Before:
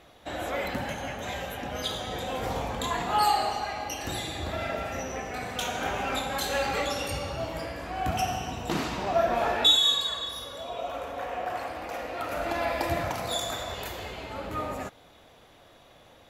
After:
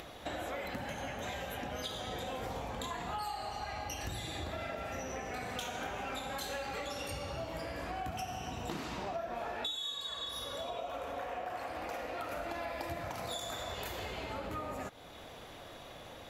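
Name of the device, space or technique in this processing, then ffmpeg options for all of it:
upward and downward compression: -filter_complex "[0:a]asplit=3[s0][s1][s2];[s0]afade=t=out:st=3.03:d=0.02[s3];[s1]asubboost=boost=2.5:cutoff=170,afade=t=in:st=3.03:d=0.02,afade=t=out:st=4.27:d=0.02[s4];[s2]afade=t=in:st=4.27:d=0.02[s5];[s3][s4][s5]amix=inputs=3:normalize=0,acompressor=mode=upward:threshold=0.00447:ratio=2.5,acompressor=threshold=0.01:ratio=8,volume=1.41"

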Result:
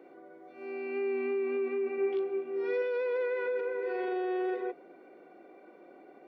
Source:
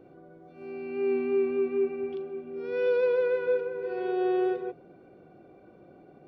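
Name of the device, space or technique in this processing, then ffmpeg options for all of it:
laptop speaker: -filter_complex "[0:a]highpass=f=270:w=0.5412,highpass=f=270:w=1.3066,equalizer=f=960:t=o:w=0.55:g=4,equalizer=f=2000:t=o:w=0.38:g=11,alimiter=level_in=1.26:limit=0.0631:level=0:latency=1:release=18,volume=0.794,asettb=1/sr,asplit=3[s0][s1][s2];[s0]atrim=end=1.964[s3];[s1]atrim=start=1.96:end=2.82,asetpts=PTS-STARTPTS,afade=t=in:d=0.004:c=qsin,afade=t=out:st=0.856:d=0.004:c=qsin,asplit=2[s4][s5];[s5]adelay=18,volume=0.631[s6];[s4][s6]amix=inputs=2:normalize=0,atrim=end_sample=37926[s7];[s2]atrim=start=2.816[s8];[s3][s7]acrossfade=d=0.004:c1=hsin:c2=qsin[s9];[s9][s8]acrossfade=d=0.004:c1=qsin:c2=hsin"

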